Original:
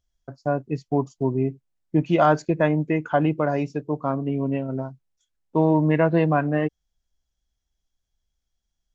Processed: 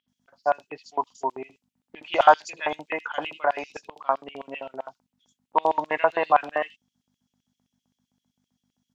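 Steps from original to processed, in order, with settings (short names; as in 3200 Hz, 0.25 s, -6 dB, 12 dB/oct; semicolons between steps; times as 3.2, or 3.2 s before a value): hum 50 Hz, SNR 19 dB; LFO high-pass square 7.7 Hz 840–3000 Hz; bands offset in time lows, highs 80 ms, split 3800 Hz; gain +2.5 dB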